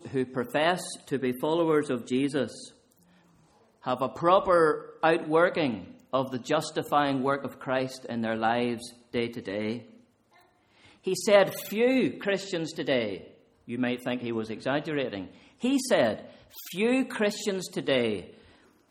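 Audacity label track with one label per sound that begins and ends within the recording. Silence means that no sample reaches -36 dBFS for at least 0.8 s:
3.860000	9.790000	sound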